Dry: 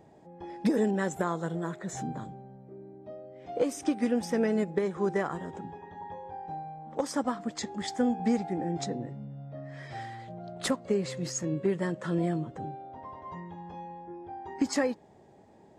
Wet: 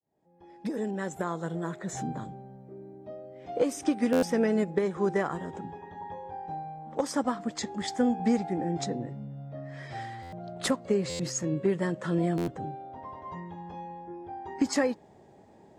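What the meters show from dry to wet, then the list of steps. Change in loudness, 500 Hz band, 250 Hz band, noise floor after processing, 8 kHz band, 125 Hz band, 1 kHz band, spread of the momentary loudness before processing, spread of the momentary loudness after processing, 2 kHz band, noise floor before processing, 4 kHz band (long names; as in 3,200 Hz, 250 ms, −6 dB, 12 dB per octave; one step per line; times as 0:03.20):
+1.0 dB, +1.5 dB, +1.0 dB, −56 dBFS, +1.5 dB, +1.0 dB, +1.0 dB, 16 LU, 15 LU, +1.0 dB, −56 dBFS, +1.5 dB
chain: fade in at the beginning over 1.89 s
buffer that repeats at 0:04.12/0:10.22/0:11.09/0:12.37, samples 512, times 8
level +1.5 dB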